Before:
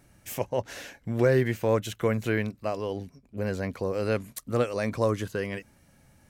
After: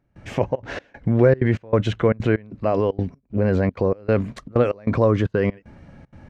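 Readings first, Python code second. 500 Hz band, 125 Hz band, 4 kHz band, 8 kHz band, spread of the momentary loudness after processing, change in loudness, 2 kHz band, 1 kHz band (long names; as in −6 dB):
+6.5 dB, +9.0 dB, +2.0 dB, can't be measured, 9 LU, +7.0 dB, +3.0 dB, +5.5 dB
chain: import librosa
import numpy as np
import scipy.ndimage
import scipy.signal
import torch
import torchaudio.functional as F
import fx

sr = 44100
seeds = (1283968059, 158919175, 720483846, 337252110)

p1 = fx.over_compress(x, sr, threshold_db=-34.0, ratio=-1.0)
p2 = x + (p1 * librosa.db_to_amplitude(-1.5))
p3 = fx.step_gate(p2, sr, bpm=191, pattern='..xxxxx.xx', floor_db=-24.0, edge_ms=4.5)
p4 = fx.spacing_loss(p3, sr, db_at_10k=34)
y = p4 * librosa.db_to_amplitude(8.0)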